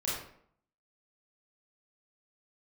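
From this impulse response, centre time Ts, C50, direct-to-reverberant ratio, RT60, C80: 57 ms, 1.0 dB, −8.0 dB, 0.65 s, 5.0 dB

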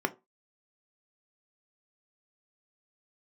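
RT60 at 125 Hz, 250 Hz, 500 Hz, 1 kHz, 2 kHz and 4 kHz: 0.25, 0.25, 0.25, 0.25, 0.20, 0.15 seconds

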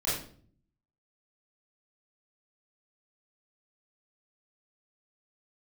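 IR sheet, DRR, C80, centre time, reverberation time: −10.5 dB, 6.5 dB, 52 ms, 0.50 s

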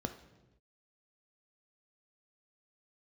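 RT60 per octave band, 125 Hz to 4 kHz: 1.3, 1.2, 1.1, 0.95, 0.90, 0.85 seconds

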